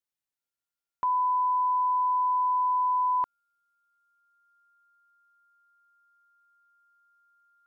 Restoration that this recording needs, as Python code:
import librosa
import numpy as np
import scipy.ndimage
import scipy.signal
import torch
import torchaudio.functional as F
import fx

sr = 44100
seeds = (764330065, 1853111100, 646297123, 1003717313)

y = fx.notch(x, sr, hz=1400.0, q=30.0)